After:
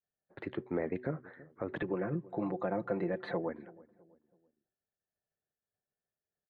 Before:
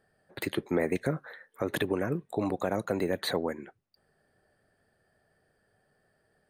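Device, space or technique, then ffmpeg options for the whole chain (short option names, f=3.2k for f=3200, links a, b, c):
hearing-loss simulation: -filter_complex "[0:a]lowpass=2.1k,agate=range=-33dB:threshold=-58dB:ratio=3:detection=peak,aemphasis=mode=reproduction:type=50fm,bandreject=f=124.9:t=h:w=4,bandreject=f=249.8:t=h:w=4,bandreject=f=374.7:t=h:w=4,asettb=1/sr,asplit=3[a][b][c];[a]atrim=end=1.804[d];[b]atrim=start=1.8:end=3.49,asetpts=PTS-STARTPTS,afade=t=in:d=0.004:c=qsin,afade=t=out:st=1.686:d=0.004:c=qsin,aecho=1:1:5.8:0.79,atrim=end_sample=74529[e];[c]atrim=start=3.486[f];[d][e]acrossfade=d=0.004:c1=hsin:c2=qsin[g];[g][f]acrossfade=d=0.004:c1=qsin:c2=hsin,asplit=2[h][i];[i]adelay=328,lowpass=f=920:p=1,volume=-20dB,asplit=2[j][k];[k]adelay=328,lowpass=f=920:p=1,volume=0.43,asplit=2[l][m];[m]adelay=328,lowpass=f=920:p=1,volume=0.43[n];[h][j][l][n]amix=inputs=4:normalize=0,volume=-6.5dB"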